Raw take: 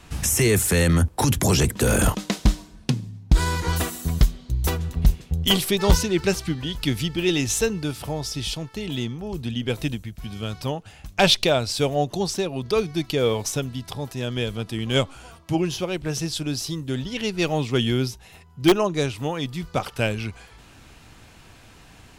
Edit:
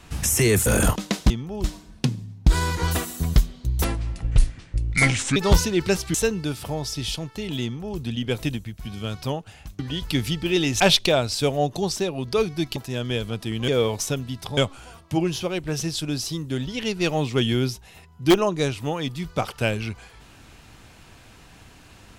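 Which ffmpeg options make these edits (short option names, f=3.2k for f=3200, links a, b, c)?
-filter_complex "[0:a]asplit=12[a][b][c][d][e][f][g][h][i][j][k][l];[a]atrim=end=0.662[m];[b]atrim=start=1.848:end=2.492[n];[c]atrim=start=9.018:end=9.362[o];[d]atrim=start=2.488:end=4.694[p];[e]atrim=start=4.69:end=5.74,asetpts=PTS-STARTPTS,asetrate=30429,aresample=44100[q];[f]atrim=start=5.736:end=6.522[r];[g]atrim=start=7.528:end=11.182[s];[h]atrim=start=6.518:end=7.532[t];[i]atrim=start=11.178:end=13.142[u];[j]atrim=start=14.028:end=14.952[v];[k]atrim=start=13.138:end=14.032[w];[l]atrim=start=14.948[x];[m][n]acrossfade=d=0.004:c1=hsin:c2=hsin[y];[y][o]acrossfade=d=0.004:c1=hsin:c2=hsin[z];[z][p]acrossfade=d=0.004:c1=hsin:c2=hsin[aa];[aa][q]acrossfade=d=0.004:c1=hsin:c2=hsin[ab];[ab][r]acrossfade=d=0.004:c1=hsin:c2=hsin[ac];[ac][s]acrossfade=d=0.004:c1=hsin:c2=hsin[ad];[ad][t]acrossfade=d=0.004:c1=hsin:c2=hsin[ae];[ae][u]acrossfade=d=0.004:c1=hsin:c2=hsin[af];[af][v]acrossfade=d=0.004:c1=hsin:c2=hsin[ag];[ag][w]acrossfade=d=0.004:c1=hsin:c2=hsin[ah];[ah][x]acrossfade=d=0.004:c1=hsin:c2=hsin"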